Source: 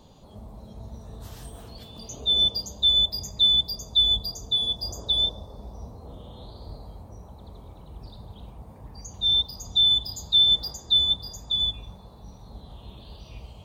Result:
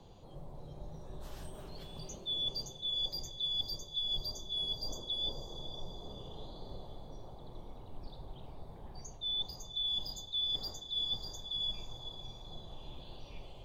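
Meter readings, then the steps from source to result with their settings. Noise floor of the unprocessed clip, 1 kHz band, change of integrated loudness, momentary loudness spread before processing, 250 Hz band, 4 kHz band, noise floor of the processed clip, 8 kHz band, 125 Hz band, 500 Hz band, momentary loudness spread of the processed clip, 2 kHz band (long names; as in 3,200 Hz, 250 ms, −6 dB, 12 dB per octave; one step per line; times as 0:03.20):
−48 dBFS, −6.0 dB, −15.5 dB, 9 LU, −8.0 dB, −14.5 dB, −51 dBFS, −10.0 dB, −10.0 dB, −5.0 dB, 18 LU, can't be measured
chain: frequency shifter −66 Hz
reversed playback
downward compressor 6 to 1, threshold −28 dBFS, peak gain reduction 12 dB
reversed playback
high-shelf EQ 4,000 Hz −7.5 dB
feedback delay with all-pass diffusion 513 ms, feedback 45%, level −11.5 dB
level −3 dB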